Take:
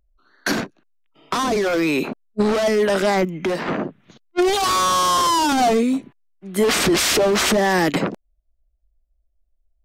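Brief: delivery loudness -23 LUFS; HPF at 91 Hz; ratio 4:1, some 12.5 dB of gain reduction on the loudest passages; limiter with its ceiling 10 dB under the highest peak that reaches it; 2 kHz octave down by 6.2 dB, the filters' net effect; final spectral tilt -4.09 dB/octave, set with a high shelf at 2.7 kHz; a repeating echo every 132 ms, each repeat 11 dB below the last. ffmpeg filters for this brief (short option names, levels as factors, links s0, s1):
-af "highpass=91,equalizer=f=2000:t=o:g=-6.5,highshelf=f=2700:g=-3.5,acompressor=threshold=0.0316:ratio=4,alimiter=level_in=1.12:limit=0.0631:level=0:latency=1,volume=0.891,aecho=1:1:132|264|396:0.282|0.0789|0.0221,volume=3.16"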